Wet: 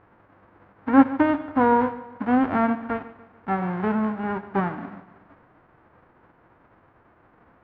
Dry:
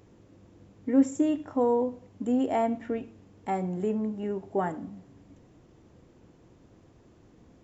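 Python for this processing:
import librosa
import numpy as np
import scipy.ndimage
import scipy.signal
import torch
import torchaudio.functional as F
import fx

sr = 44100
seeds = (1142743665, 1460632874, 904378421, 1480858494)

p1 = fx.envelope_flatten(x, sr, power=0.1)
p2 = scipy.signal.sosfilt(scipy.signal.butter(4, 1500.0, 'lowpass', fs=sr, output='sos'), p1)
p3 = p2 + fx.echo_feedback(p2, sr, ms=145, feedback_pct=45, wet_db=-17.0, dry=0)
y = F.gain(torch.from_numpy(p3), 7.5).numpy()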